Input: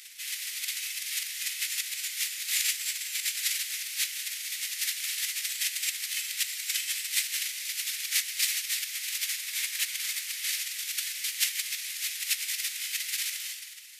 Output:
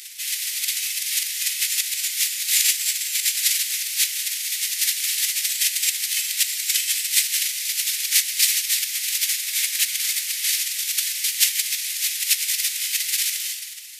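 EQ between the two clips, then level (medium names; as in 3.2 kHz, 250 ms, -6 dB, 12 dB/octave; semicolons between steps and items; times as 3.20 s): treble shelf 2.1 kHz +10.5 dB; 0.0 dB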